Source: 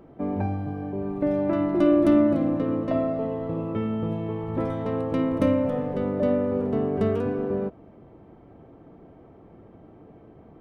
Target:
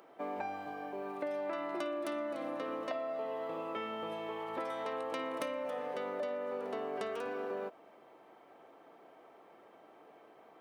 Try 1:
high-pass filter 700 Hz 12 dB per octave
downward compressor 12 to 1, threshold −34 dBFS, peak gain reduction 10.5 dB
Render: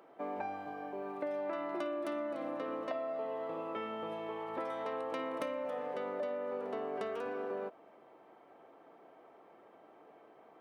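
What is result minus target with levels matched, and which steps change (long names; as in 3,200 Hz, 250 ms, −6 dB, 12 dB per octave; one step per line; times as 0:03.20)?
4,000 Hz band −4.0 dB
add after high-pass filter: high-shelf EQ 2,800 Hz +8 dB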